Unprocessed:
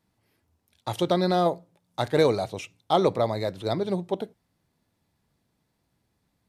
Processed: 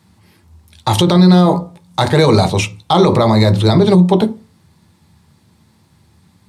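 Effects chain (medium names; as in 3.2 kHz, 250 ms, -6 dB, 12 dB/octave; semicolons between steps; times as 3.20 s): graphic EQ 125/250/500/1000/2000/4000/8000 Hz -6/+9/-3/+7/+4/+6/+7 dB; on a send at -7.5 dB: reverberation RT60 0.35 s, pre-delay 3 ms; on the sum: loudness maximiser +13 dB; trim -1 dB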